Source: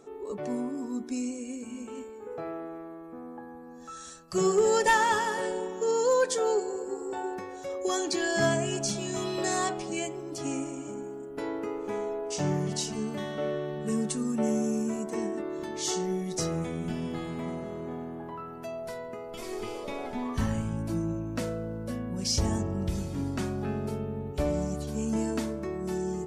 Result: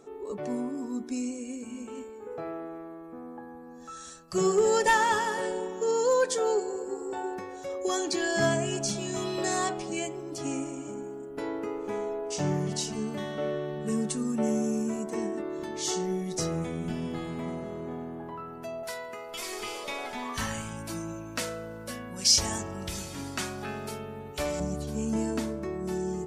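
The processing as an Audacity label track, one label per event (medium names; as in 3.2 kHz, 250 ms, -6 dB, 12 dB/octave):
18.830000	24.600000	tilt shelf lows -9 dB, about 700 Hz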